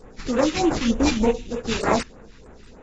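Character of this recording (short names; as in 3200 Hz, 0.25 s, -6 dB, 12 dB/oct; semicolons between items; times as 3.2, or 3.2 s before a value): aliases and images of a low sample rate 3200 Hz, jitter 20%; phasing stages 2, 3.3 Hz, lowest notch 540–4800 Hz; AAC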